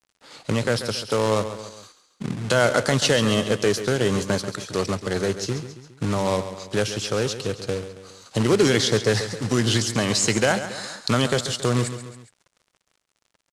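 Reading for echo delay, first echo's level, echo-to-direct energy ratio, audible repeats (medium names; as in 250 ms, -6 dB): 137 ms, -11.5 dB, -10.5 dB, 3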